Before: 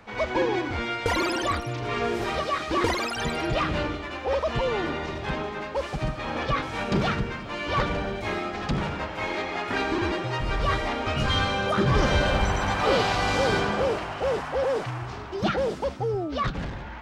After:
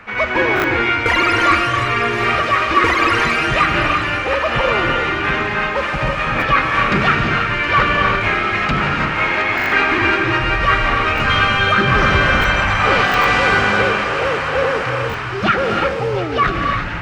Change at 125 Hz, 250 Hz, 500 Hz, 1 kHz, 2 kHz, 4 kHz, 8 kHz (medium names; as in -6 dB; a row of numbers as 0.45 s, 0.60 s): +7.0 dB, +6.5 dB, +6.5 dB, +12.0 dB, +15.5 dB, +9.5 dB, +4.5 dB